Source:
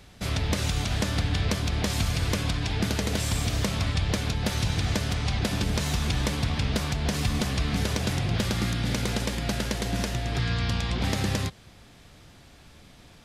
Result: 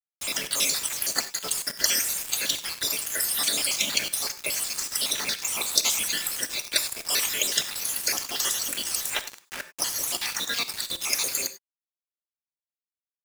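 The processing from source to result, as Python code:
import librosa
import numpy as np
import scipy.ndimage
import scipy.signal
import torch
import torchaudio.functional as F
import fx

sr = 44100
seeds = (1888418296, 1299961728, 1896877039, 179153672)

y = fx.spec_dropout(x, sr, seeds[0], share_pct=65)
y = fx.lowpass(y, sr, hz=fx.line((9.14, 3200.0), (9.78, 1400.0)), slope=12, at=(9.14, 9.78), fade=0.02)
y = fx.spec_gate(y, sr, threshold_db=-10, keep='weak')
y = scipy.signal.sosfilt(scipy.signal.butter(2, 83.0, 'highpass', fs=sr, output='sos'), y)
y = fx.tilt_eq(y, sr, slope=4.5)
y = fx.quant_dither(y, sr, seeds[1], bits=6, dither='none')
y = fx.rev_gated(y, sr, seeds[2], gate_ms=120, shape='flat', drr_db=10.5)
y = y * 10.0 ** (4.5 / 20.0)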